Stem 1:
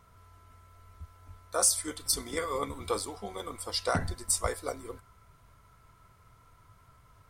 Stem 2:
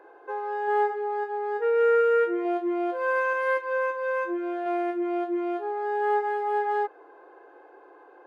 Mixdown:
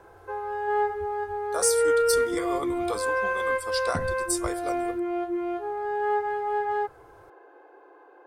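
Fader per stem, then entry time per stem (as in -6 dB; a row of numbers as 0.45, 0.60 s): -0.5, -1.0 dB; 0.00, 0.00 s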